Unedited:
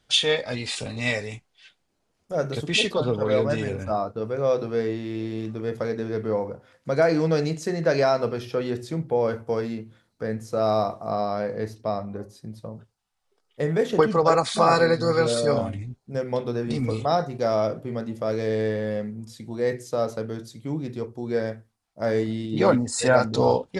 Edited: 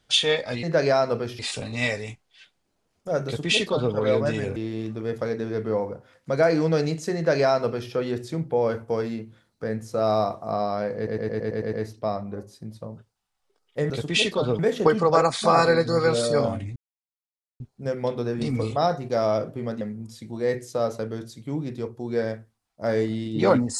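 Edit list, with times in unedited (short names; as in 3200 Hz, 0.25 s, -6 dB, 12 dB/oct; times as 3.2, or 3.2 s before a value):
2.49–3.18 copy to 13.72
3.8–5.15 cut
7.75–8.51 copy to 0.63
11.55 stutter 0.11 s, 8 plays
15.89 insert silence 0.84 s
18.1–18.99 cut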